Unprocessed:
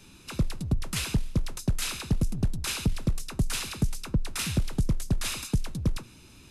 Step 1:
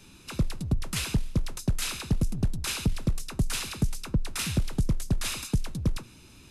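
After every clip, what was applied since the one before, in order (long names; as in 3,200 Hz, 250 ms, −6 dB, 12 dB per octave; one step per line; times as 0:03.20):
no processing that can be heard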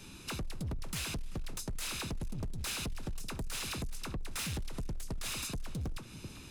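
tape delay 387 ms, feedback 36%, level −19 dB, low-pass 5,600 Hz
downward compressor 6 to 1, threshold −33 dBFS, peak gain reduction 12.5 dB
hard clipping −36 dBFS, distortion −9 dB
level +2 dB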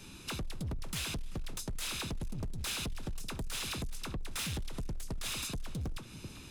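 dynamic equaliser 3,400 Hz, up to +4 dB, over −60 dBFS, Q 4.3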